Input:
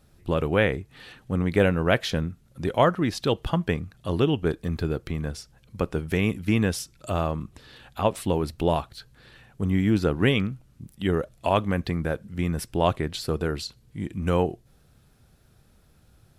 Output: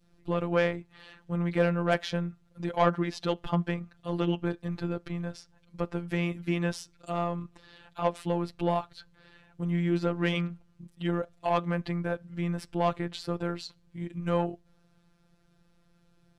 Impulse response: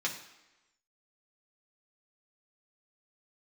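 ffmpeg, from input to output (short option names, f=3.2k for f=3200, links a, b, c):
-af "adynamicsmooth=sensitivity=0.5:basefreq=7.5k,adynamicequalizer=threshold=0.0158:dfrequency=930:dqfactor=0.92:tfrequency=930:tqfactor=0.92:attack=5:release=100:ratio=0.375:range=2:mode=boostabove:tftype=bell,aeval=exprs='0.708*(cos(1*acos(clip(val(0)/0.708,-1,1)))-cos(1*PI/2))+0.02*(cos(4*acos(clip(val(0)/0.708,-1,1)))-cos(4*PI/2))+0.0631*(cos(5*acos(clip(val(0)/0.708,-1,1)))-cos(5*PI/2))':c=same,afftfilt=real='hypot(re,im)*cos(PI*b)':imag='0':win_size=1024:overlap=0.75,volume=-5dB"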